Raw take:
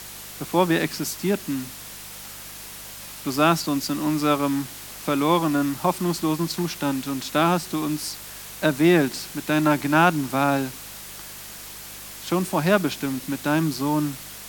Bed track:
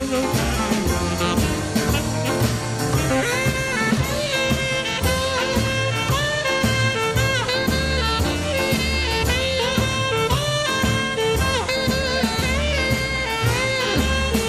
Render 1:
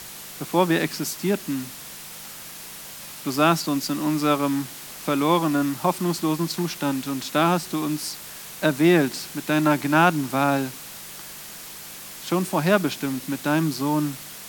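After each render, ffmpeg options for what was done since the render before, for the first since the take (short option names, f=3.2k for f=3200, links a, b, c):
-af "bandreject=f=50:t=h:w=4,bandreject=f=100:t=h:w=4"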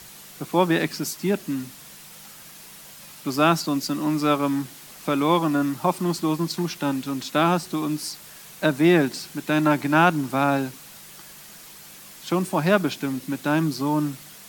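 -af "afftdn=nr=6:nf=-39"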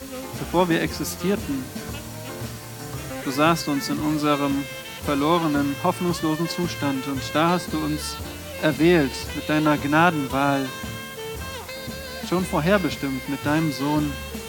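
-filter_complex "[1:a]volume=-13dB[a];[0:a][a]amix=inputs=2:normalize=0"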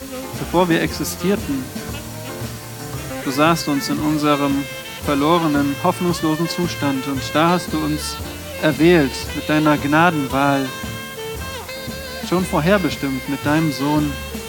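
-af "volume=4.5dB,alimiter=limit=-2dB:level=0:latency=1"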